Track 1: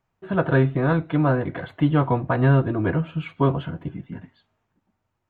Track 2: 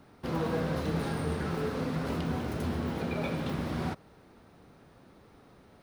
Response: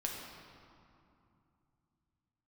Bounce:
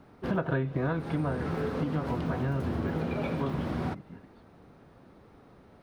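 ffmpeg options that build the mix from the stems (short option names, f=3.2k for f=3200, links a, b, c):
-filter_complex "[0:a]volume=-1dB,afade=t=out:st=0.78:d=0.61:silence=0.281838,asplit=2[a][b];[1:a]highshelf=f=2.9k:g=-9,volume=2dB[c];[b]apad=whole_len=256948[d];[c][d]sidechaincompress=threshold=-25dB:ratio=8:attack=5.7:release=526[e];[a][e]amix=inputs=2:normalize=0,acompressor=threshold=-25dB:ratio=12"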